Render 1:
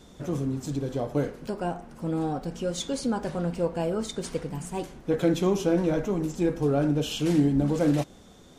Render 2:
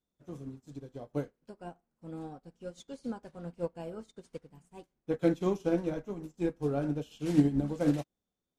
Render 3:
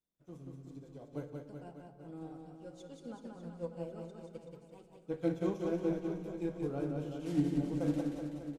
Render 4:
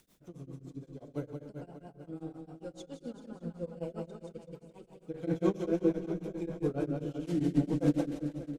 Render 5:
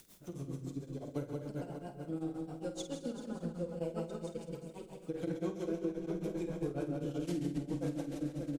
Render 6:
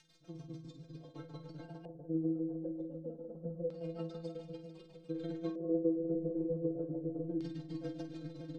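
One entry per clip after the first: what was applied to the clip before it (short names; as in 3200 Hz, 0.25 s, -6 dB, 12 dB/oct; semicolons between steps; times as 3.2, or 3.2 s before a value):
upward expander 2.5:1, over -43 dBFS
notch 1700 Hz, Q 17; on a send: reverse bouncing-ball echo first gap 0.18 s, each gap 1.1×, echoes 5; on the sum: shoebox room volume 1600 m³, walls mixed, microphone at 0.66 m; gain -8 dB
upward compressor, threshold -54 dBFS; rotary speaker horn 6.7 Hz; beating tremolo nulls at 7.5 Hz; gain +8 dB
high shelf 4500 Hz +7 dB; compressor 6:1, threshold -38 dBFS, peak gain reduction 16 dB; on a send: loudspeakers at several distances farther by 17 m -10 dB, 46 m -12 dB; on the sum: gain +4 dB
tremolo 20 Hz, depth 69%; metallic resonator 160 Hz, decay 0.29 s, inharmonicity 0.008; LFO low-pass square 0.27 Hz 510–4400 Hz; gain +7.5 dB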